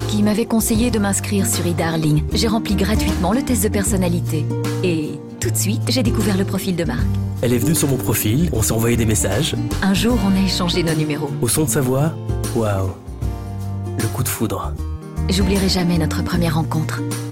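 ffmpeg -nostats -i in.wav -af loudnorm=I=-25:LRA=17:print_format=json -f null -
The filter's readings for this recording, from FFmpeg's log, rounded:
"input_i" : "-18.9",
"input_tp" : "-6.6",
"input_lra" : "3.0",
"input_thresh" : "-28.9",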